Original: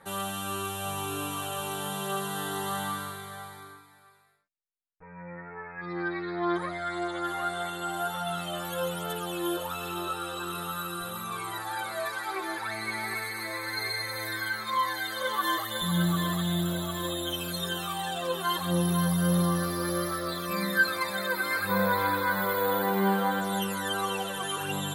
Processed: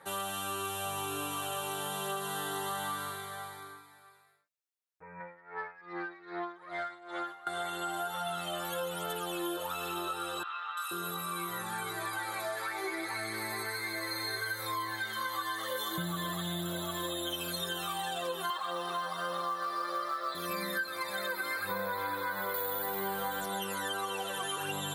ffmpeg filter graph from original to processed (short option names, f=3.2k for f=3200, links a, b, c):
-filter_complex "[0:a]asettb=1/sr,asplit=3[a][b][c];[a]atrim=end=5.204[d];[b]atrim=start=5.2:end=7.47,asetpts=PTS-STARTPTS,afade=t=in:d=0.004:c=qsin,afade=t=out:st=2.266:d=0.004:c=qsin,acompressor=threshold=-32dB:ratio=12:attack=3.2:release=140:knee=1:detection=peak,asplit=2[e][f];[f]highpass=f=720:p=1,volume=12dB,asoftclip=type=tanh:threshold=-22dB[g];[e][g]amix=inputs=2:normalize=0,lowpass=f=2.2k:p=1,volume=-6dB,aeval=exprs='val(0)*pow(10,-19*(0.5-0.5*cos(2*PI*2.5*n/s))/20)':c=same[h];[c]atrim=start=7.466[i];[d][h]acrossfade=d=0.004:c1=hsin:c2=qsin[j];[j][i]acrossfade=d=0.004:c1=qsin:c2=hsin,asettb=1/sr,asplit=3[k][l][m];[k]atrim=end=10.434[n];[l]atrim=start=10.43:end=15.98,asetpts=PTS-STARTPTS,afade=t=in:d=0.004:c=qsin,afade=t=out:st=5.546:d=0.004:c=qsin,asplit=2[o][p];[p]adelay=18,volume=-6dB[q];[o][q]amix=inputs=2:normalize=0,atrim=end_sample=244755,acrossover=split=920|3200[r][s][t];[t]adelay=340[u];[r]adelay=480[v];[v][s][u]amix=inputs=3:normalize=0,atrim=end_sample=244755[w];[m]atrim=start=15.976[x];[n][w]acrossfade=d=0.004:c1=hsin:c2=qsin[y];[y][x]acrossfade=d=0.004:c1=qsin:c2=hsin,asettb=1/sr,asplit=3[z][aa][ab];[z]atrim=end=18.504[ac];[aa]atrim=start=18.5:end=20.35,asetpts=PTS-STARTPTS,afade=t=in:d=0.004:c=qsin,afade=t=out:st=1.846:d=0.004:c=qsin,highpass=490,equalizer=f=700:t=q:w=4:g=4,equalizer=f=1.2k:t=q:w=4:g=10,equalizer=f=6.4k:t=q:w=4:g=-9,lowpass=f=7.9k:w=0.5412,lowpass=f=7.9k:w=1.3066,acrusher=bits=6:mode=log:mix=0:aa=0.000001[ad];[ab]atrim=start=20.346[ae];[ac][ad]acrossfade=d=0.004:c1=hsin:c2=qsin[af];[af][ae]acrossfade=d=0.004:c1=qsin:c2=hsin,asettb=1/sr,asplit=3[ag][ah][ai];[ag]atrim=end=22.544[aj];[ah]atrim=start=22.54:end=23.46,asetpts=PTS-STARTPTS,afade=t=in:d=0.004:c=qsin,afade=t=out:st=0.916:d=0.004:c=qsin,highshelf=f=4.5k:g=10,bandreject=f=50:t=h:w=6,bandreject=f=100:t=h:w=6,bandreject=f=150:t=h:w=6,bandreject=f=200:t=h:w=6,bandreject=f=250:t=h:w=6,bandreject=f=300:t=h:w=6,bandreject=f=350:t=h:w=6,aeval=exprs='val(0)+0.0126*(sin(2*PI*50*n/s)+sin(2*PI*2*50*n/s)/2+sin(2*PI*3*50*n/s)/3+sin(2*PI*4*50*n/s)/4+sin(2*PI*5*50*n/s)/5)':c=same[ak];[ai]atrim=start=23.456[al];[aj][ak]acrossfade=d=0.004:c1=hsin:c2=qsin[am];[am][al]acrossfade=d=0.004:c1=qsin:c2=hsin,highpass=120,equalizer=f=210:t=o:w=0.69:g=-8,acompressor=threshold=-32dB:ratio=6"